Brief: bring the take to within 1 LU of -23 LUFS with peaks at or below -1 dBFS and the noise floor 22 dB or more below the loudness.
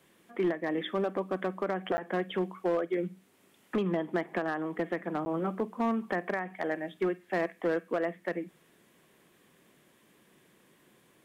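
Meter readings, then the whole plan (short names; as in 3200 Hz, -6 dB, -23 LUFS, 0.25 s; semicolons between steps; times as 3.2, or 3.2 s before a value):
clipped 0.9%; flat tops at -22.5 dBFS; dropouts 2; longest dropout 10 ms; loudness -32.5 LUFS; peak -22.5 dBFS; loudness target -23.0 LUFS
-> clip repair -22.5 dBFS; interpolate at 1.97/5.25, 10 ms; gain +9.5 dB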